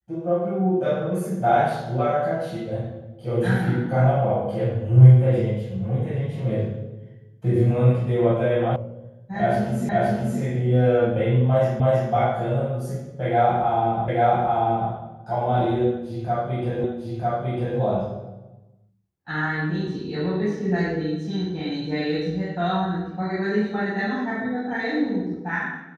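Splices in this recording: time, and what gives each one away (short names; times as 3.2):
8.76 sound cut off
9.89 repeat of the last 0.52 s
11.8 repeat of the last 0.32 s
14.08 repeat of the last 0.84 s
16.84 repeat of the last 0.95 s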